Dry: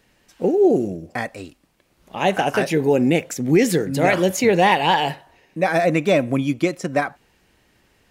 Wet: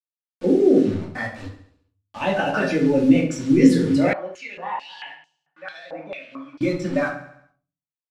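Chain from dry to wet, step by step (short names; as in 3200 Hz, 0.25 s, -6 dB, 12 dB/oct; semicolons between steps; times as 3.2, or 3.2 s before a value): per-bin expansion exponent 1.5; limiter -15.5 dBFS, peak gain reduction 8 dB; bit-crush 7-bit; air absorption 90 m; feedback echo 69 ms, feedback 54%, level -12 dB; shoebox room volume 230 m³, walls furnished, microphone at 2.5 m; 4.13–6.61 stepped band-pass 4.5 Hz 840–6400 Hz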